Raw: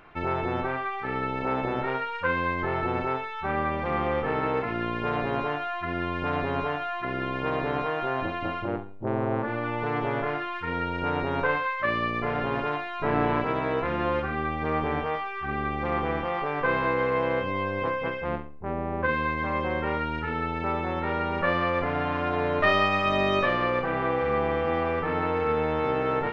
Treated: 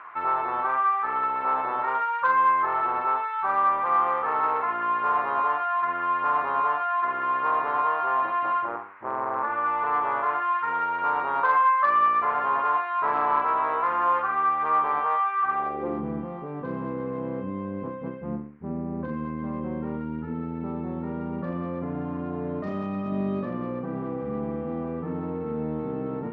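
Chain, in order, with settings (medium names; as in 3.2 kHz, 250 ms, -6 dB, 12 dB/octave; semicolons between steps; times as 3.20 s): sine folder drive 7 dB, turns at -9 dBFS; reverse; upward compressor, threshold -22 dBFS; reverse; peaking EQ 1.1 kHz +5 dB 0.61 oct; in parallel at -9 dB: saturation -14 dBFS, distortion -13 dB; on the sum: band noise 920–2300 Hz -39 dBFS; band-pass sweep 1.1 kHz -> 210 Hz, 15.52–16.04 s; trim -5.5 dB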